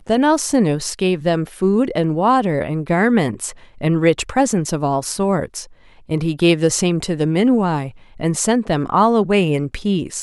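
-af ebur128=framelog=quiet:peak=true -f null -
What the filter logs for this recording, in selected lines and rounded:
Integrated loudness:
  I:         -17.8 LUFS
  Threshold: -28.1 LUFS
Loudness range:
  LRA:         1.8 LU
  Threshold: -38.3 LUFS
  LRA low:   -19.1 LUFS
  LRA high:  -17.3 LUFS
True peak:
  Peak:       -2.3 dBFS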